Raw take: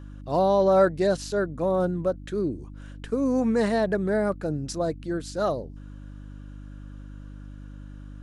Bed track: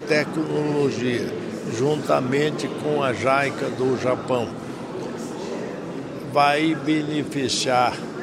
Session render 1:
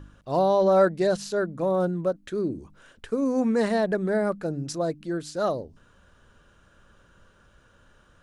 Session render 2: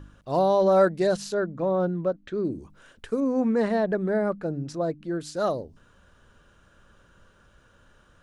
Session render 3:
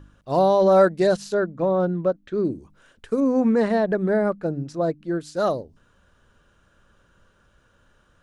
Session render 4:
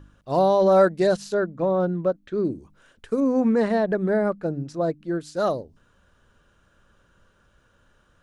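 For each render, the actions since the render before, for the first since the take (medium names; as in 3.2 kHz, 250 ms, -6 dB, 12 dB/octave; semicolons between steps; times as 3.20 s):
de-hum 50 Hz, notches 6
1.34–2.45 s: distance through air 150 m; 3.20–5.21 s: low-pass 2.2 kHz 6 dB/octave
in parallel at +3 dB: peak limiter -19.5 dBFS, peak gain reduction 9.5 dB; on the sum: upward expansion 1.5:1, over -32 dBFS
trim -1 dB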